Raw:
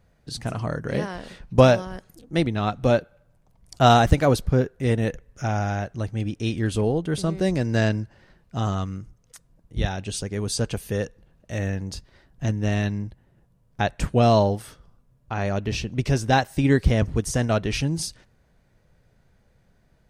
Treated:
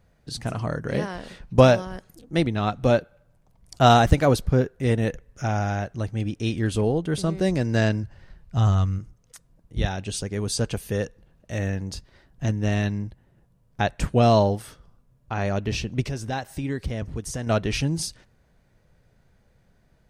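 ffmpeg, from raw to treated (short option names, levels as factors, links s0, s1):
-filter_complex "[0:a]asplit=3[s0][s1][s2];[s0]afade=t=out:st=8.03:d=0.02[s3];[s1]asubboost=boost=4.5:cutoff=120,afade=t=in:st=8.03:d=0.02,afade=t=out:st=8.98:d=0.02[s4];[s2]afade=t=in:st=8.98:d=0.02[s5];[s3][s4][s5]amix=inputs=3:normalize=0,asettb=1/sr,asplit=3[s6][s7][s8];[s6]atrim=end=16.054[s9];[s7]atrim=start=16.05:end=17.47,asetpts=PTS-STARTPTS,afade=t=in:d=0.004:c=qsin,afade=t=out:st=1.416:d=0.004:c=qsin,acompressor=threshold=0.0251:ratio=2:attack=3.2:release=140:knee=1:detection=peak[s10];[s8]atrim=start=17.466[s11];[s9][s10]acrossfade=d=0.004:c1=hsin:c2=qsin[s12];[s12][s11]acrossfade=d=0.004:c1=qsin:c2=hsin"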